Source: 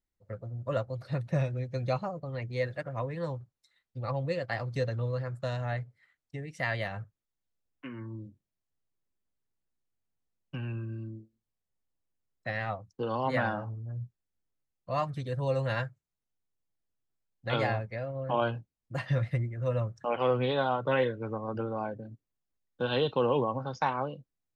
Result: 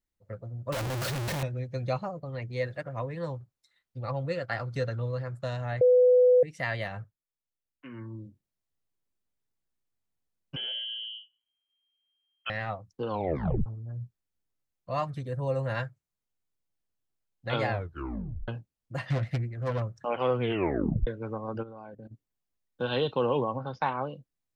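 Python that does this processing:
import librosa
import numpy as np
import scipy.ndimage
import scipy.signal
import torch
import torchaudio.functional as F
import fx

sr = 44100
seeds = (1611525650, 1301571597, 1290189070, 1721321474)

y = fx.clip_1bit(x, sr, at=(0.72, 1.43))
y = fx.peak_eq(y, sr, hz=1400.0, db=10.0, octaves=0.25, at=(4.16, 4.99))
y = fx.freq_invert(y, sr, carrier_hz=3200, at=(10.56, 12.5))
y = fx.peak_eq(y, sr, hz=3700.0, db=-8.5, octaves=1.4, at=(15.19, 15.75))
y = fx.self_delay(y, sr, depth_ms=0.41, at=(19.1, 19.82))
y = fx.level_steps(y, sr, step_db=15, at=(21.62, 22.1), fade=0.02)
y = fx.lowpass(y, sr, hz=4400.0, slope=24, at=(23.56, 24.06))
y = fx.edit(y, sr, fx.bleep(start_s=5.81, length_s=0.62, hz=499.0, db=-16.0),
    fx.fade_down_up(start_s=7.0, length_s=0.96, db=-9.0, fade_s=0.17),
    fx.tape_stop(start_s=13.1, length_s=0.56),
    fx.tape_stop(start_s=17.71, length_s=0.77),
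    fx.tape_stop(start_s=20.4, length_s=0.67), tone=tone)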